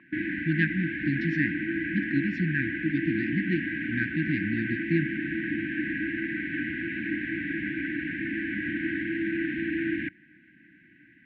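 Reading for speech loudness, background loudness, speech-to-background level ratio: -30.0 LUFS, -30.5 LUFS, 0.5 dB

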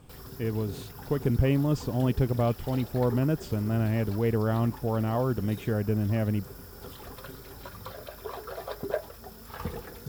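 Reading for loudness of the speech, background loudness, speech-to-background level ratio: -28.0 LUFS, -42.0 LUFS, 14.0 dB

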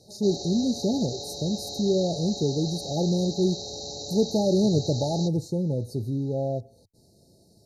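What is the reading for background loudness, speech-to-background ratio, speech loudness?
-34.5 LUFS, 8.0 dB, -26.5 LUFS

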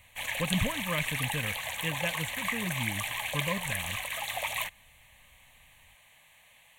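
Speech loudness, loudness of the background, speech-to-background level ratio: -35.5 LUFS, -32.5 LUFS, -3.0 dB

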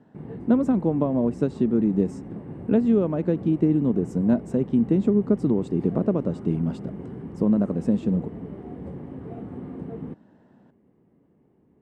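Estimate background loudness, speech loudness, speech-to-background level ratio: -37.5 LUFS, -23.5 LUFS, 14.0 dB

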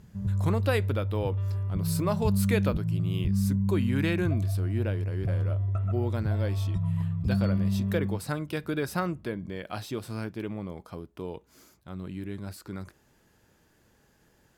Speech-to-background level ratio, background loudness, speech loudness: -4.5 dB, -29.0 LUFS, -33.5 LUFS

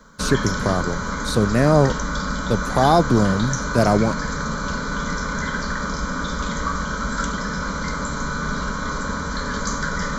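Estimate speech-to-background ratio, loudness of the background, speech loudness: 5.5 dB, -25.5 LUFS, -20.0 LUFS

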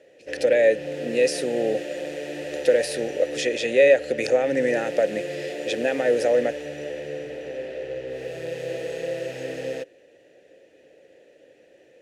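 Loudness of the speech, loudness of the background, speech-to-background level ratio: -22.5 LUFS, -32.5 LUFS, 10.0 dB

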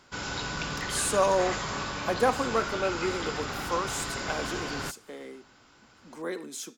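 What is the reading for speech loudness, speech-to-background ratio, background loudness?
-30.5 LUFS, 2.5 dB, -33.0 LUFS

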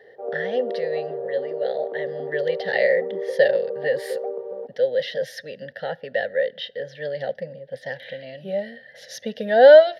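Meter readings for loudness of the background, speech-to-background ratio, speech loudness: -30.5 LUFS, 7.5 dB, -23.0 LUFS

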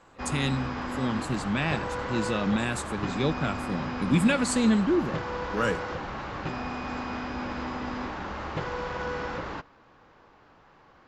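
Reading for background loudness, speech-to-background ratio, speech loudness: -33.5 LUFS, 5.0 dB, -28.5 LUFS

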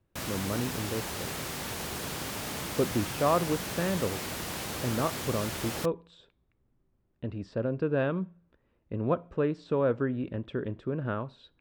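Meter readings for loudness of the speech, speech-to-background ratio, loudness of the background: -32.0 LUFS, 3.0 dB, -35.0 LUFS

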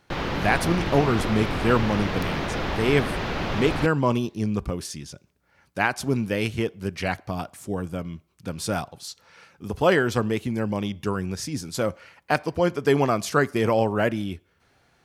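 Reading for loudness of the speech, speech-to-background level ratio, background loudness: -25.0 LUFS, 3.5 dB, -28.5 LUFS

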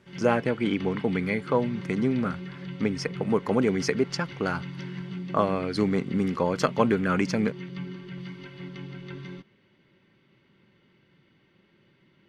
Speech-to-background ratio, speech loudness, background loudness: 11.5 dB, -27.0 LUFS, -38.5 LUFS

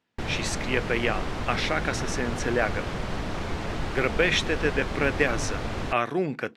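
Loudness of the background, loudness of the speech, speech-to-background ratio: -32.5 LUFS, -27.5 LUFS, 5.0 dB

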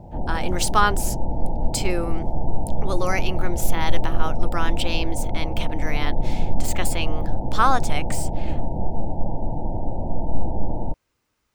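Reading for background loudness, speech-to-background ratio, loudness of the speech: -29.5 LUFS, 2.5 dB, -27.0 LUFS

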